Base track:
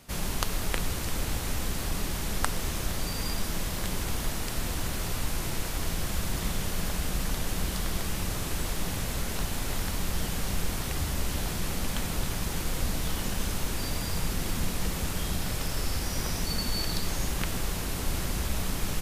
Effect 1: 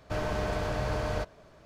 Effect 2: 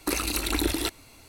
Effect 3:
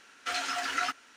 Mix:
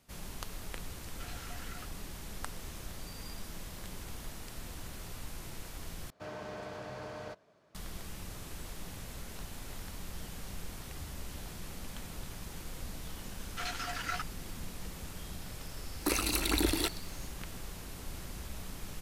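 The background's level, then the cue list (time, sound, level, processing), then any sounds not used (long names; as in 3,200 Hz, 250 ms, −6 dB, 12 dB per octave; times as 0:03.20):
base track −13 dB
0:00.94: mix in 3 −13 dB + downward compressor, threshold −33 dBFS
0:06.10: overwrite with 1 −10.5 dB + high-pass filter 140 Hz
0:13.31: mix in 3 −6 dB + transient designer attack −1 dB, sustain −9 dB
0:15.99: mix in 2 −3.5 dB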